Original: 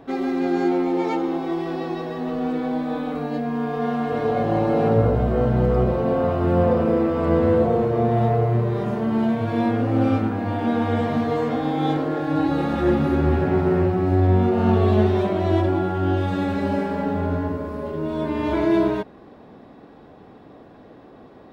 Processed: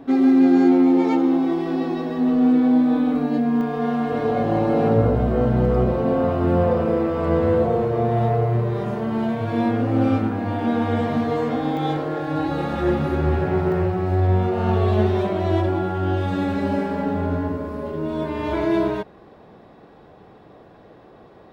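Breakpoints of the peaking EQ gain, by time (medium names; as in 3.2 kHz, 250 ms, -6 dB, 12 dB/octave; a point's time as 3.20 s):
peaking EQ 260 Hz 0.37 oct
+11 dB
from 3.61 s +4 dB
from 6.57 s -6.5 dB
from 9.50 s +1 dB
from 11.77 s -8 dB
from 13.72 s -15 dB
from 14.99 s -6.5 dB
from 16.26 s +1.5 dB
from 18.23 s -8.5 dB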